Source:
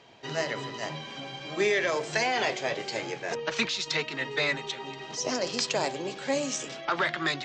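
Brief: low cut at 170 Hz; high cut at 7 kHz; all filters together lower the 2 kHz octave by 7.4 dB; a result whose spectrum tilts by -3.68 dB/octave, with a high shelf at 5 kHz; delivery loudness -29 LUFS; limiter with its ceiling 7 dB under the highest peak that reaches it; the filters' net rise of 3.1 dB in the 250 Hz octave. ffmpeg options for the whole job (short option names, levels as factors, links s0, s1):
-af "highpass=170,lowpass=7000,equalizer=f=250:t=o:g=5,equalizer=f=2000:t=o:g=-8,highshelf=f=5000:g=-5.5,volume=1.68,alimiter=limit=0.133:level=0:latency=1"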